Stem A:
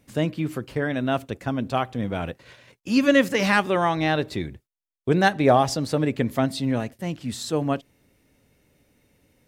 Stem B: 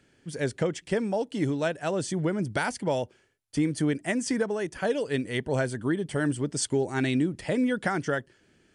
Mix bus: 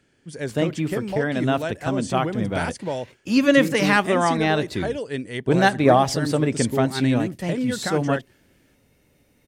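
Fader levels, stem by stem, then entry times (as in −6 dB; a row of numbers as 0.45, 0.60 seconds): +1.5, −0.5 decibels; 0.40, 0.00 seconds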